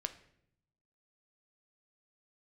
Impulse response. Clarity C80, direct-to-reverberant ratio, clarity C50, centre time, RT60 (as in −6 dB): 17.0 dB, 8.0 dB, 13.5 dB, 7 ms, 0.70 s